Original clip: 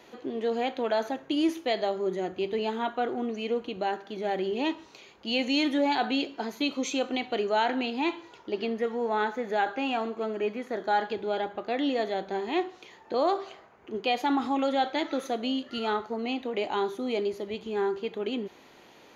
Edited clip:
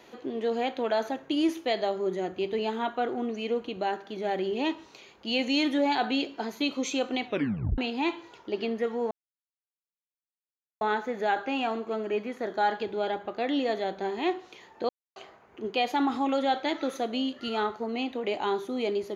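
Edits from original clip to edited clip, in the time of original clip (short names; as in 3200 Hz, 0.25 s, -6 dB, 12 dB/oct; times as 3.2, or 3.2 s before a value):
7.27 tape stop 0.51 s
9.11 insert silence 1.70 s
13.19–13.46 mute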